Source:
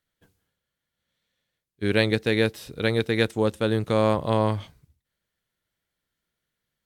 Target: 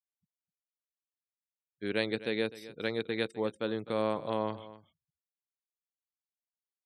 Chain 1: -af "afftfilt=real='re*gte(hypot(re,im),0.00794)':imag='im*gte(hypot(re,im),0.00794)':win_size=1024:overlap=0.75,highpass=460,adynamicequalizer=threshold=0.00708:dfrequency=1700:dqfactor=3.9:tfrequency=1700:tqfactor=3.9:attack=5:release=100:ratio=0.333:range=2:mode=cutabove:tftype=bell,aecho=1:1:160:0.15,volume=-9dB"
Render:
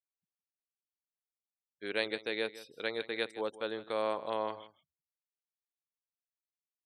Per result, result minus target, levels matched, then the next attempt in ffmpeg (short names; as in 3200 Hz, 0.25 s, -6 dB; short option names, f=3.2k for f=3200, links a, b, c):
echo 94 ms early; 250 Hz band -6.0 dB
-af "afftfilt=real='re*gte(hypot(re,im),0.00794)':imag='im*gte(hypot(re,im),0.00794)':win_size=1024:overlap=0.75,highpass=460,adynamicequalizer=threshold=0.00708:dfrequency=1700:dqfactor=3.9:tfrequency=1700:tqfactor=3.9:attack=5:release=100:ratio=0.333:range=2:mode=cutabove:tftype=bell,aecho=1:1:254:0.15,volume=-9dB"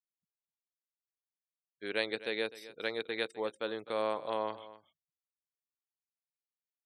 250 Hz band -6.0 dB
-af "afftfilt=real='re*gte(hypot(re,im),0.00794)':imag='im*gte(hypot(re,im),0.00794)':win_size=1024:overlap=0.75,highpass=190,adynamicequalizer=threshold=0.00708:dfrequency=1700:dqfactor=3.9:tfrequency=1700:tqfactor=3.9:attack=5:release=100:ratio=0.333:range=2:mode=cutabove:tftype=bell,aecho=1:1:254:0.15,volume=-9dB"